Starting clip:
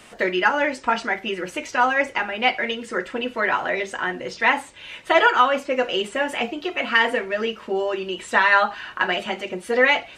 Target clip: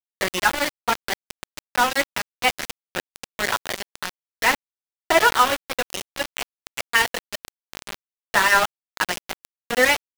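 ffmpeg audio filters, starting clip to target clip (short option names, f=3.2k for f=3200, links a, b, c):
-filter_complex "[0:a]asplit=3[a][b][c];[a]afade=t=out:st=5.63:d=0.02[d];[b]asubboost=boost=10:cutoff=76,afade=t=in:st=5.63:d=0.02,afade=t=out:st=7.87:d=0.02[e];[c]afade=t=in:st=7.87:d=0.02[f];[d][e][f]amix=inputs=3:normalize=0,aeval=exprs='val(0)*gte(abs(val(0)),0.141)':c=same"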